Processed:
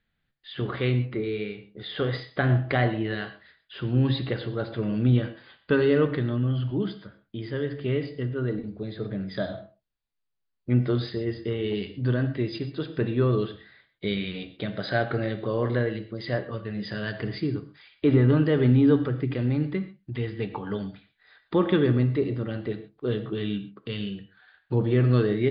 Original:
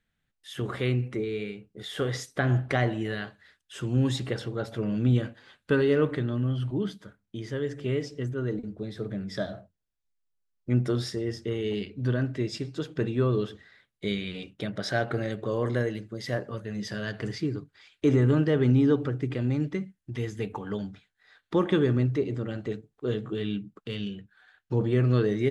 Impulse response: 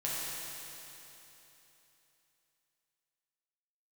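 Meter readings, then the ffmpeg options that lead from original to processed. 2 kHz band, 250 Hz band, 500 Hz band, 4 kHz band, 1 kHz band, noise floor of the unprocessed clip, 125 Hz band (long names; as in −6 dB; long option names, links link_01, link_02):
+2.0 dB, +2.0 dB, +2.0 dB, +1.5 dB, +2.0 dB, −80 dBFS, +2.5 dB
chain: -filter_complex "[0:a]asplit=2[link_01][link_02];[1:a]atrim=start_sample=2205,atrim=end_sample=6174[link_03];[link_02][link_03]afir=irnorm=-1:irlink=0,volume=-9dB[link_04];[link_01][link_04]amix=inputs=2:normalize=0" -ar 11025 -c:a libmp3lame -b:a 64k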